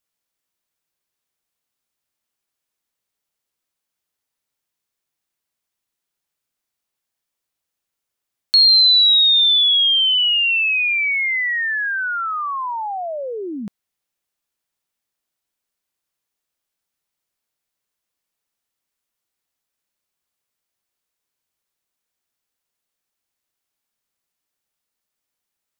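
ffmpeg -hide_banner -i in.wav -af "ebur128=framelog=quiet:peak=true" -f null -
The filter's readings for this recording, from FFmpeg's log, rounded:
Integrated loudness:
  I:         -13.2 LUFS
  Threshold: -24.2 LUFS
Loudness range:
  LRA:        18.2 LU
  Threshold: -35.9 LUFS
  LRA low:   -30.2 LUFS
  LRA high:  -12.0 LUFS
True peak:
  Peak:       -7.9 dBFS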